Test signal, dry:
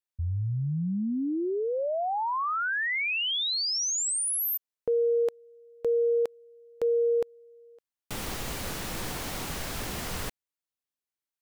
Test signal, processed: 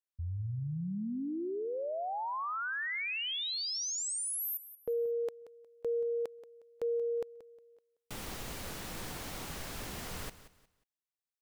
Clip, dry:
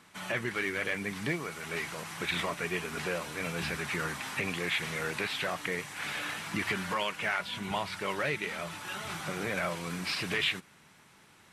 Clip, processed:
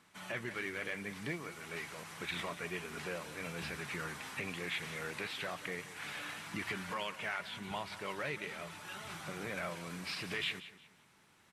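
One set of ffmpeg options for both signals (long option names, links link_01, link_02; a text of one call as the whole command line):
ffmpeg -i in.wav -af "aecho=1:1:180|360|540:0.178|0.0498|0.0139,volume=-7.5dB" out.wav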